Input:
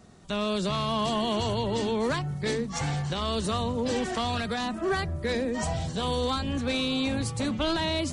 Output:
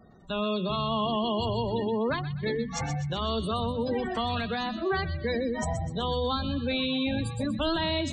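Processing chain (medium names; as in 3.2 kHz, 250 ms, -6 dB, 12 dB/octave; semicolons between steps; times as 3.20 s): hum notches 50/100/150/200/250/300/350/400 Hz; spectral gate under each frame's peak -20 dB strong; feedback echo behind a high-pass 125 ms, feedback 44%, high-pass 1.8 kHz, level -8.5 dB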